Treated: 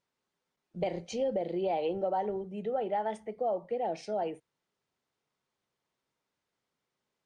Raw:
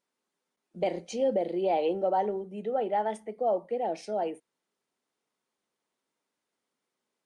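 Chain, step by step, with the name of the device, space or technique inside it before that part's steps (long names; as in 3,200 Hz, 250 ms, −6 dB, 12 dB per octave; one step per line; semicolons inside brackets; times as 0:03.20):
jukebox (low-pass filter 6,800 Hz 12 dB per octave; low shelf with overshoot 170 Hz +8.5 dB, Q 1.5; downward compressor 3 to 1, threshold −28 dBFS, peak gain reduction 4.5 dB)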